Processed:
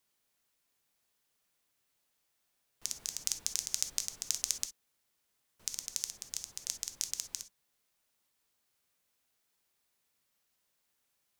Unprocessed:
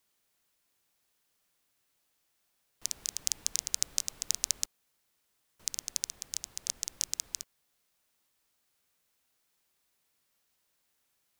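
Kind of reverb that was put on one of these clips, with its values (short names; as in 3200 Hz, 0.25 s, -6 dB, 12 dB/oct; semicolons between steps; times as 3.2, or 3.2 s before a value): non-linear reverb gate 80 ms flat, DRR 9.5 dB; gain -3 dB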